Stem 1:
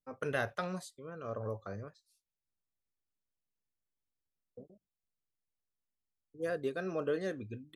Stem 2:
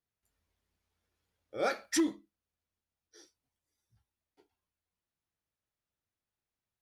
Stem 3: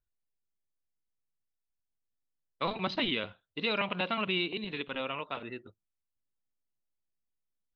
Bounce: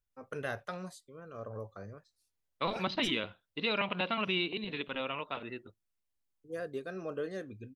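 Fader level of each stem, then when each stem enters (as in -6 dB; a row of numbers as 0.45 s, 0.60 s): -3.5 dB, -13.5 dB, -1.0 dB; 0.10 s, 1.10 s, 0.00 s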